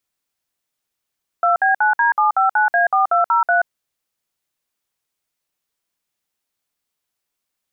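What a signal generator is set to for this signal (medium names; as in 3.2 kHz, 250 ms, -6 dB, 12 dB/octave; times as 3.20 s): DTMF "2B9D759A4203", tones 130 ms, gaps 57 ms, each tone -15 dBFS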